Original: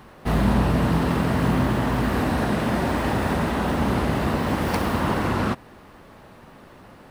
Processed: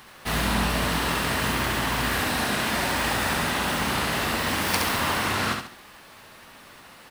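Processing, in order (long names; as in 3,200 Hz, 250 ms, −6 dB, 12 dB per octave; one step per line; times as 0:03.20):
tilt shelving filter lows −9.5 dB, about 1,200 Hz
on a send: repeating echo 69 ms, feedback 35%, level −5 dB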